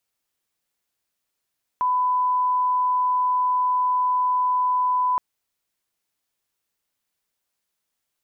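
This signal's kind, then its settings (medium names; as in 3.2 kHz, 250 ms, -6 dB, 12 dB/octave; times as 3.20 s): line-up tone -18 dBFS 3.37 s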